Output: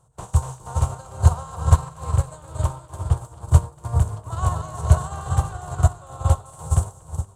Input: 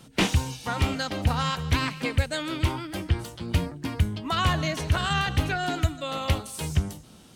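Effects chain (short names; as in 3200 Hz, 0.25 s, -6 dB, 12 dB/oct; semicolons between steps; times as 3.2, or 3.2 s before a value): per-bin compression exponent 0.6; bell 400 Hz +11 dB 1.9 oct; in parallel at -1 dB: limiter -13.5 dBFS, peak gain reduction 10 dB; on the sum: EQ curve 130 Hz 0 dB, 260 Hz -30 dB, 390 Hz -18 dB, 1000 Hz -2 dB, 2200 Hz -26 dB, 3500 Hz -19 dB, 5200 Hz -15 dB, 7600 Hz +4 dB, 14000 Hz -10 dB; split-band echo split 430 Hz, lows 0.414 s, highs 0.239 s, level -3 dB; upward expander 2.5:1, over -30 dBFS; gain +3.5 dB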